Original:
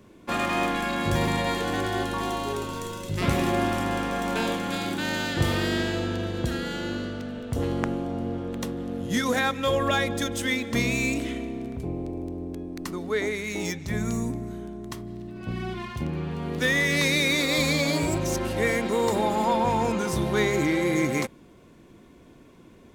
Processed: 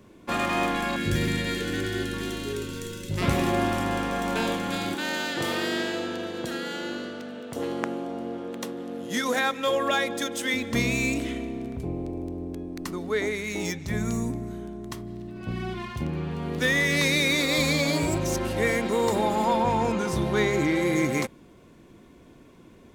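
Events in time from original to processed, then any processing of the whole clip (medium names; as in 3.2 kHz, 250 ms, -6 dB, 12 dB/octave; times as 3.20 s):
0.96–3.11 s: high-order bell 820 Hz -15.5 dB 1.2 oct
4.94–10.54 s: high-pass 270 Hz
19.62–20.76 s: treble shelf 8 kHz -6.5 dB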